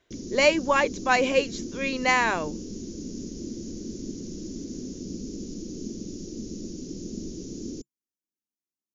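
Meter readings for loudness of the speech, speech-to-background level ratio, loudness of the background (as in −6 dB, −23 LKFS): −24.0 LKFS, 13.0 dB, −37.0 LKFS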